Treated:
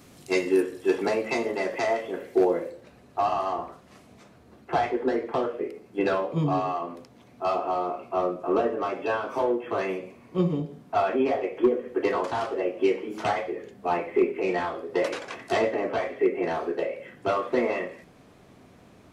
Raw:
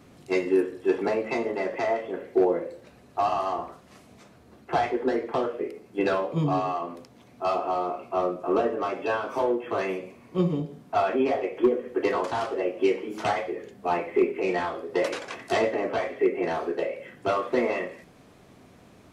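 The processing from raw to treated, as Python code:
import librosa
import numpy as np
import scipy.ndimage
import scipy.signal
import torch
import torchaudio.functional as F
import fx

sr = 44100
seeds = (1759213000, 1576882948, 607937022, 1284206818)

y = fx.high_shelf(x, sr, hz=3900.0, db=fx.steps((0.0, 11.0), (2.69, -2.5)))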